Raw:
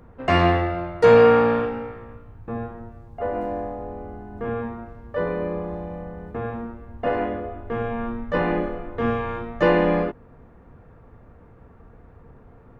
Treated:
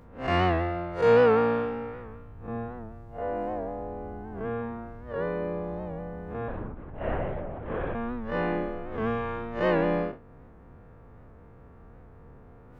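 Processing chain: spectral blur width 99 ms; in parallel at 0 dB: compression, threshold -33 dBFS, peak gain reduction 21 dB; 6.48–7.95 s: on the sum: LPC vocoder at 8 kHz whisper; warped record 78 rpm, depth 100 cents; trim -6.5 dB

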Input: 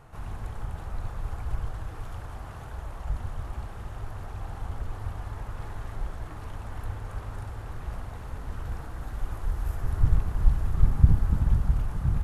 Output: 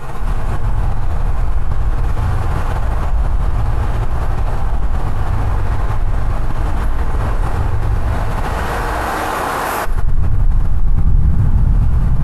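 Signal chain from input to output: 8.02–9.86 s: high-pass 450 Hz 12 dB/octave; reverberation RT60 2.2 s, pre-delay 5 ms, DRR -13 dB; level flattener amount 70%; trim -12.5 dB

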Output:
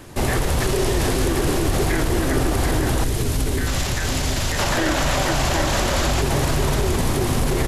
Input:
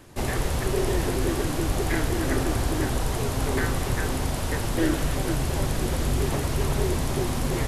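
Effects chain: 0.60–1.30 s: peaking EQ 5.2 kHz +4 dB 2.1 oct; 3.68–6.22 s: time-frequency box 530–7800 Hz +8 dB; delay 745 ms -7.5 dB; peak limiter -19.5 dBFS, peak gain reduction 11.5 dB; 3.04–4.59 s: peaking EQ 890 Hz -9.5 dB 2.1 oct; trim +8.5 dB

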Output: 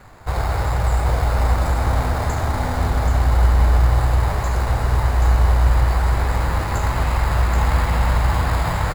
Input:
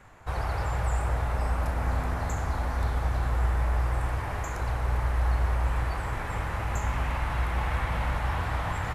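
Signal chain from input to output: in parallel at -3.5 dB: sample-and-hold 15×; on the sum: delay 780 ms -4.5 dB; trim +4.5 dB

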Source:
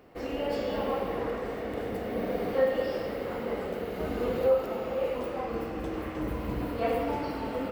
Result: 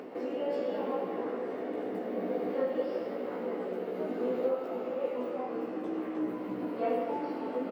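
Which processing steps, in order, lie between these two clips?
doubling 16 ms -2 dB; upward compressor, threshold -27 dBFS; high-pass 240 Hz 24 dB/octave; tilt EQ -3 dB/octave; trim -7 dB

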